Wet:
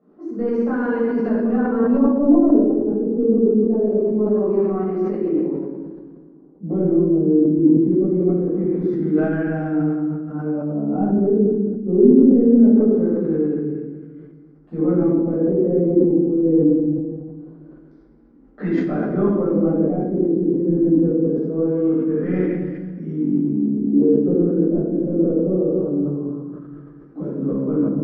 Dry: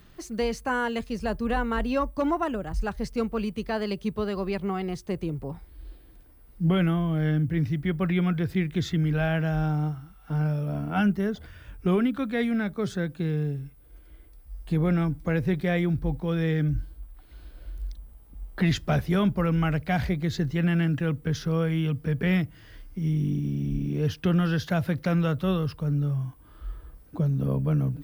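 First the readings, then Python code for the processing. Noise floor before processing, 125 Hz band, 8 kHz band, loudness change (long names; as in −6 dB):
−52 dBFS, −1.0 dB, can't be measured, +8.5 dB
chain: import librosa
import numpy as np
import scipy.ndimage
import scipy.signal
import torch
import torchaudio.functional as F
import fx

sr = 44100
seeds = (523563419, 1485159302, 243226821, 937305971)

p1 = scipy.signal.sosfilt(scipy.signal.ellip(3, 1.0, 40, [260.0, 8600.0], 'bandpass', fs=sr, output='sos'), x)
p2 = np.clip(p1, -10.0 ** (-26.5 / 20.0), 10.0 ** (-26.5 / 20.0))
p3 = p1 + F.gain(torch.from_numpy(p2), -6.5).numpy()
p4 = fx.high_shelf(p3, sr, hz=2400.0, db=-9.5)
p5 = p4 + fx.echo_filtered(p4, sr, ms=251, feedback_pct=32, hz=3500.0, wet_db=-12.5, dry=0)
p6 = fx.room_shoebox(p5, sr, seeds[0], volume_m3=790.0, walls='mixed', distance_m=6.6)
p7 = fx.filter_lfo_lowpass(p6, sr, shape='sine', hz=0.23, low_hz=400.0, high_hz=1800.0, q=1.6)
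p8 = fx.band_shelf(p7, sr, hz=1500.0, db=-15.5, octaves=2.9)
p9 = fx.sustainer(p8, sr, db_per_s=46.0)
y = F.gain(torch.from_numpy(p9), -2.5).numpy()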